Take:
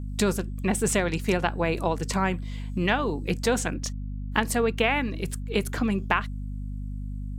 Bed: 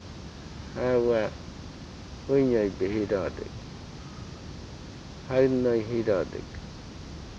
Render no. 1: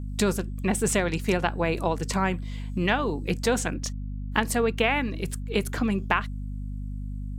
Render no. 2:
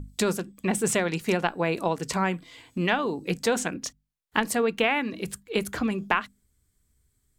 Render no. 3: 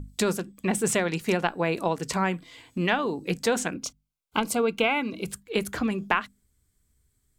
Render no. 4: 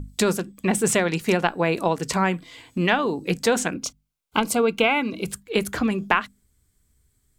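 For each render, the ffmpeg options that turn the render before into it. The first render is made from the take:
-af anull
-af "bandreject=f=50:t=h:w=6,bandreject=f=100:t=h:w=6,bandreject=f=150:t=h:w=6,bandreject=f=200:t=h:w=6,bandreject=f=250:t=h:w=6"
-filter_complex "[0:a]asettb=1/sr,asplit=3[a][b][c];[a]atrim=end=3.754[d];[b]atrim=start=3.75:end=5.32,asetpts=PTS-STARTPTS,afade=t=in:d=0.004:c=qsin,afade=t=out:st=1.566:d=0.004:c=qsin,asuperstop=centerf=1800:order=12:qfactor=4.9[e];[c]atrim=start=5.316[f];[d][e]acrossfade=d=0.004:c1=hsin:c2=qsin[g];[g][f]acrossfade=d=0.004:c1=qsin:c2=hsin"
-af "volume=4dB"

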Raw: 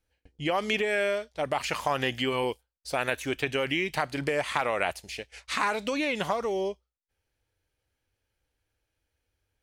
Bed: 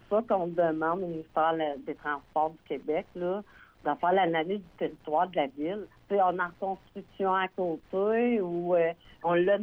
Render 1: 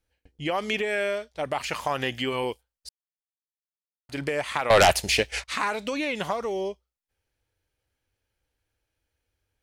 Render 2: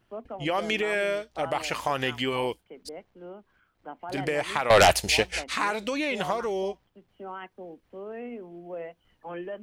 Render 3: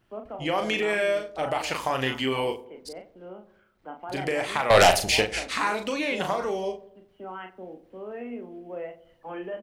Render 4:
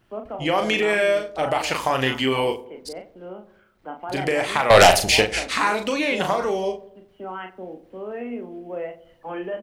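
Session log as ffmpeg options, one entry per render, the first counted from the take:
-filter_complex "[0:a]asettb=1/sr,asplit=3[a][b][c];[a]atrim=end=4.704[d];[b]atrim=start=4.7:end=5.44,asetpts=PTS-STARTPTS,afade=t=in:d=0.004:c=qsin,afade=t=out:st=0.736:d=0.004:c=qsin,aeval=exprs='0.282*sin(PI/2*3.98*val(0)/0.282)':c=same[e];[c]atrim=start=5.436[f];[d][e]acrossfade=d=0.004:c1=hsin:c2=qsin[g];[g][f]acrossfade=d=0.004:c1=qsin:c2=hsin,asplit=3[h][i][j];[h]atrim=end=2.89,asetpts=PTS-STARTPTS,afade=t=out:st=2.886:d=0.004:c=hsin[k];[i]atrim=start=2.89:end=4.09,asetpts=PTS-STARTPTS,volume=0[l];[j]atrim=start=4.09,asetpts=PTS-STARTPTS,afade=t=in:d=0.004:c=hsin[m];[k][l][m]concat=n=3:v=0:a=1"
-filter_complex "[1:a]volume=-12dB[a];[0:a][a]amix=inputs=2:normalize=0"
-filter_complex "[0:a]asplit=2[a][b];[b]adelay=38,volume=-6dB[c];[a][c]amix=inputs=2:normalize=0,asplit=2[d][e];[e]adelay=91,lowpass=f=950:p=1,volume=-14.5dB,asplit=2[f][g];[g]adelay=91,lowpass=f=950:p=1,volume=0.55,asplit=2[h][i];[i]adelay=91,lowpass=f=950:p=1,volume=0.55,asplit=2[j][k];[k]adelay=91,lowpass=f=950:p=1,volume=0.55,asplit=2[l][m];[m]adelay=91,lowpass=f=950:p=1,volume=0.55[n];[d][f][h][j][l][n]amix=inputs=6:normalize=0"
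-af "volume=5dB,alimiter=limit=-3dB:level=0:latency=1"

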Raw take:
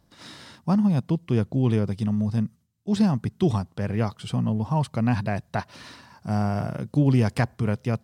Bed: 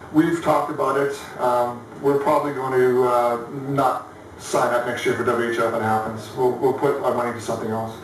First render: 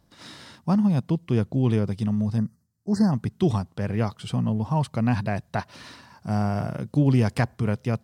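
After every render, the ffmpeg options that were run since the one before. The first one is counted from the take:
-filter_complex "[0:a]asplit=3[a][b][c];[a]afade=t=out:st=2.37:d=0.02[d];[b]asuperstop=centerf=2900:order=20:qfactor=1.3,afade=t=in:st=2.37:d=0.02,afade=t=out:st=3.11:d=0.02[e];[c]afade=t=in:st=3.11:d=0.02[f];[d][e][f]amix=inputs=3:normalize=0"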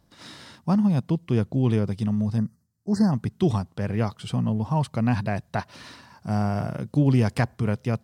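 -af anull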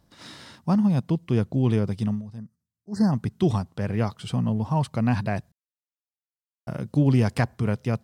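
-filter_complex "[0:a]asplit=5[a][b][c][d][e];[a]atrim=end=2.22,asetpts=PTS-STARTPTS,afade=t=out:st=2.06:d=0.16:c=qsin:silence=0.199526[f];[b]atrim=start=2.22:end=2.91,asetpts=PTS-STARTPTS,volume=-14dB[g];[c]atrim=start=2.91:end=5.52,asetpts=PTS-STARTPTS,afade=t=in:d=0.16:c=qsin:silence=0.199526,afade=t=out:st=2.606:d=0.004:c=hsin[h];[d]atrim=start=5.52:end=6.67,asetpts=PTS-STARTPTS,volume=0[i];[e]atrim=start=6.67,asetpts=PTS-STARTPTS,afade=t=in:d=0.004:c=hsin[j];[f][g][h][i][j]concat=n=5:v=0:a=1"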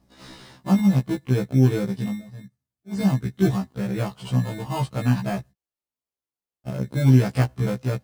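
-filter_complex "[0:a]asplit=2[a][b];[b]acrusher=samples=23:mix=1:aa=0.000001,volume=-4.5dB[c];[a][c]amix=inputs=2:normalize=0,afftfilt=real='re*1.73*eq(mod(b,3),0)':imag='im*1.73*eq(mod(b,3),0)':win_size=2048:overlap=0.75"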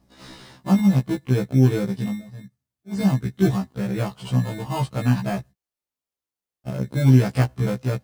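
-af "volume=1dB"

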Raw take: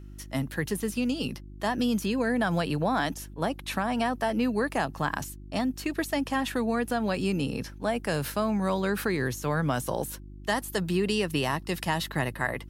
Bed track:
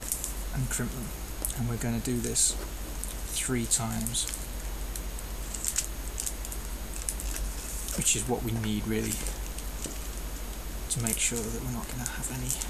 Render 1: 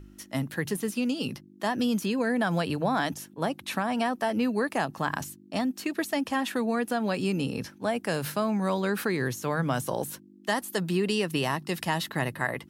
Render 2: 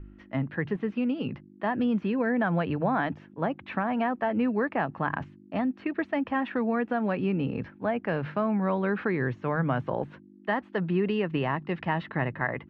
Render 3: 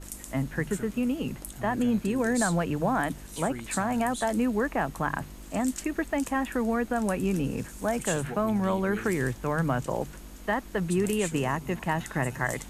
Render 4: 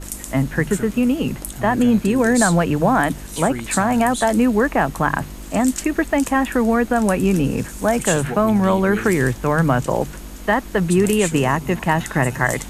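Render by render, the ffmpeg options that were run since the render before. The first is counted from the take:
-af "bandreject=f=50:t=h:w=4,bandreject=f=100:t=h:w=4,bandreject=f=150:t=h:w=4"
-af "lowpass=f=2.4k:w=0.5412,lowpass=f=2.4k:w=1.3066,lowshelf=f=75:g=7"
-filter_complex "[1:a]volume=-9dB[a];[0:a][a]amix=inputs=2:normalize=0"
-af "volume=10dB"

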